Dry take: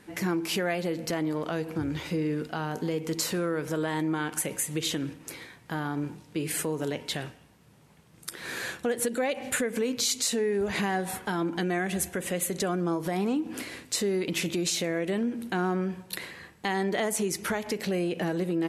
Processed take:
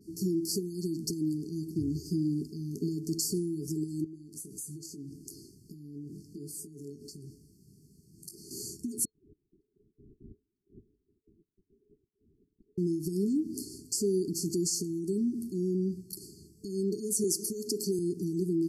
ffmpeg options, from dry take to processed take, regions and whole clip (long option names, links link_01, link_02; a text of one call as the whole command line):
ffmpeg -i in.wav -filter_complex "[0:a]asettb=1/sr,asplit=3[link_01][link_02][link_03];[link_01]atrim=end=4.044[link_04];[link_02]atrim=start=4.04:end=8.51,asetpts=PTS-STARTPTS,afade=type=in:duration=0.004:curve=qsin,afade=type=out:start_time=4.466:duration=0.004:curve=qsin,acompressor=threshold=-39dB:ratio=16:attack=3.2:release=140:knee=1:detection=peak,asplit=2[link_05][link_06];[link_06]adelay=21,volume=-9dB[link_07];[link_05][link_07]amix=inputs=2:normalize=0,atrim=end_sample=197127[link_08];[link_03]atrim=start=8.506[link_09];[link_04][link_08]acrossfade=duration=0.004:curve1=hsin:curve2=qsin[link_10];[link_10][link_09]acrossfade=duration=0.004:curve1=qsin:curve2=hsin,asettb=1/sr,asplit=3[link_11][link_12][link_13];[link_11]atrim=end=9.054[link_14];[link_12]atrim=start=9.05:end=12.78,asetpts=PTS-STARTPTS,afade=type=in:duration=0.004:curve=qsin,afade=type=out:start_time=3.726:duration=0.004:curve=qsin,agate=range=-33dB:threshold=-35dB:ratio=3:release=100:detection=peak,acrossover=split=1200[link_15][link_16];[link_15]aeval=exprs='val(0)*(1-0.7/2+0.7/2*cos(2*PI*2*n/s))':channel_layout=same[link_17];[link_16]aeval=exprs='val(0)*(1-0.7/2-0.7/2*cos(2*PI*2*n/s))':channel_layout=same[link_18];[link_17][link_18]amix=inputs=2:normalize=0,lowpass=frequency=3300:width_type=q:width=0.5098,lowpass=frequency=3300:width_type=q:width=0.6013,lowpass=frequency=3300:width_type=q:width=0.9,lowpass=frequency=3300:width_type=q:width=2.563,afreqshift=-3900[link_19];[link_13]atrim=start=12.776[link_20];[link_14][link_19]acrossfade=duration=0.004:curve1=hsin:curve2=qsin[link_21];[link_21][link_20]acrossfade=duration=0.004:curve1=qsin:curve2=hsin,asettb=1/sr,asplit=3[link_22][link_23][link_24];[link_22]atrim=end=17.244[link_25];[link_23]atrim=start=17.24:end=17.99,asetpts=PTS-STARTPTS,afade=type=in:duration=0.004:curve=qsin,afade=type=out:start_time=0.746:duration=0.004:curve=qsin,highpass=250,acontrast=77[link_26];[link_24]atrim=start=17.986[link_27];[link_25][link_26]acrossfade=duration=0.004:curve1=hsin:curve2=qsin[link_28];[link_28][link_27]acrossfade=duration=0.004:curve1=qsin:curve2=hsin,alimiter=limit=-21dB:level=0:latency=1:release=121,adynamicequalizer=threshold=0.00501:dfrequency=9000:dqfactor=0.94:tfrequency=9000:tqfactor=0.94:attack=5:release=100:ratio=0.375:range=2.5:mode=boostabove:tftype=bell,afftfilt=real='re*(1-between(b*sr/4096,440,4300))':imag='im*(1-between(b*sr/4096,440,4300))':win_size=4096:overlap=0.75" out.wav